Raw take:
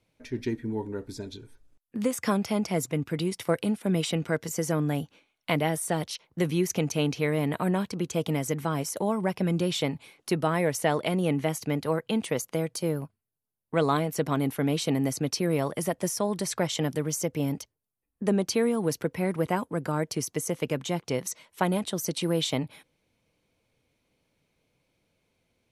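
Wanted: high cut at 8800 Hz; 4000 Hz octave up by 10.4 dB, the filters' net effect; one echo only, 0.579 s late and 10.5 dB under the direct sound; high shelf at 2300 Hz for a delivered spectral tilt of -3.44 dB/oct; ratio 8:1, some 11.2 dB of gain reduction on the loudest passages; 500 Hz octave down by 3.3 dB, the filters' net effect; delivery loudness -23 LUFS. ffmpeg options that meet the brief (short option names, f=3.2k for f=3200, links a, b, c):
-af "lowpass=8.8k,equalizer=f=500:t=o:g=-4.5,highshelf=f=2.3k:g=7,equalizer=f=4k:t=o:g=7,acompressor=threshold=-28dB:ratio=8,aecho=1:1:579:0.299,volume=9.5dB"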